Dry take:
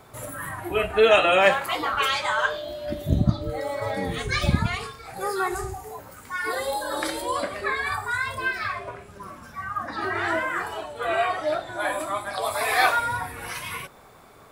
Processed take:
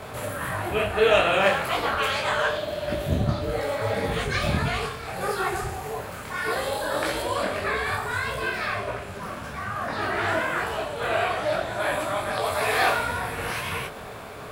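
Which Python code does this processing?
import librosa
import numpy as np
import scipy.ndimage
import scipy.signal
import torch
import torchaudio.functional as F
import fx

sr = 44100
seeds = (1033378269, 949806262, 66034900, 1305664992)

y = fx.bin_compress(x, sr, power=0.6)
y = fx.detune_double(y, sr, cents=58)
y = y * librosa.db_to_amplitude(-1.5)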